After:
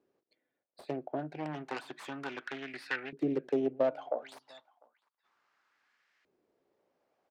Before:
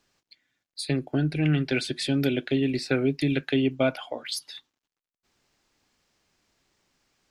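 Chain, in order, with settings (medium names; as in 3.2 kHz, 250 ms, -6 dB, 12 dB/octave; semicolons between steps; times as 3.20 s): self-modulated delay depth 0.32 ms; in parallel at +2 dB: compression, threshold -34 dBFS, peak gain reduction 14.5 dB; on the sum: echo from a far wall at 120 m, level -26 dB; LFO band-pass saw up 0.32 Hz 380–1900 Hz; trim -1.5 dB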